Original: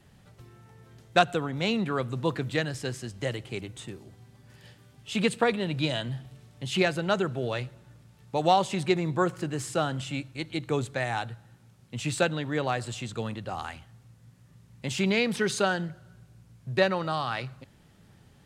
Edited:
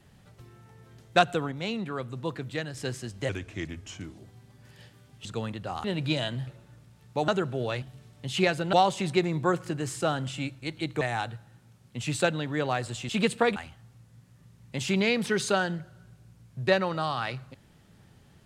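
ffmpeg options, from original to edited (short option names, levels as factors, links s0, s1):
-filter_complex "[0:a]asplit=14[s0][s1][s2][s3][s4][s5][s6][s7][s8][s9][s10][s11][s12][s13];[s0]atrim=end=1.522[s14];[s1]atrim=start=1.518:end=2.772,asetpts=PTS-STARTPTS,volume=0.562[s15];[s2]atrim=start=2.768:end=3.294[s16];[s3]atrim=start=3.29:end=4.03,asetpts=PTS-STARTPTS,asetrate=36603,aresample=44100,atrim=end_sample=39318,asetpts=PTS-STARTPTS[s17];[s4]atrim=start=4.026:end=5.102[s18];[s5]atrim=start=13.068:end=13.662[s19];[s6]atrim=start=5.568:end=6.202[s20];[s7]atrim=start=7.648:end=8.462[s21];[s8]atrim=start=7.108:end=7.652[s22];[s9]atrim=start=6.198:end=7.112[s23];[s10]atrim=start=8.458:end=10.742[s24];[s11]atrim=start=10.988:end=13.072[s25];[s12]atrim=start=5.098:end=5.572[s26];[s13]atrim=start=13.658[s27];[s14][s15]acrossfade=d=0.004:c1=hsin:c2=hsin[s28];[s28][s16]acrossfade=d=0.004:c1=hsin:c2=hsin[s29];[s29][s17]acrossfade=d=0.004:c1=hsin:c2=hsin[s30];[s30][s18]acrossfade=d=0.004:c1=hsin:c2=hsin[s31];[s31][s19]acrossfade=d=0.004:c1=hsin:c2=hsin[s32];[s32][s20]acrossfade=d=0.004:c1=hsin:c2=hsin[s33];[s33][s21]acrossfade=d=0.004:c1=hsin:c2=hsin[s34];[s34][s22]acrossfade=d=0.004:c1=hsin:c2=hsin[s35];[s35][s23]acrossfade=d=0.004:c1=hsin:c2=hsin[s36];[s36][s24]acrossfade=d=0.004:c1=hsin:c2=hsin[s37];[s37][s25]acrossfade=d=0.004:c1=hsin:c2=hsin[s38];[s38][s26]acrossfade=d=0.004:c1=hsin:c2=hsin[s39];[s39][s27]acrossfade=d=0.004:c1=hsin:c2=hsin"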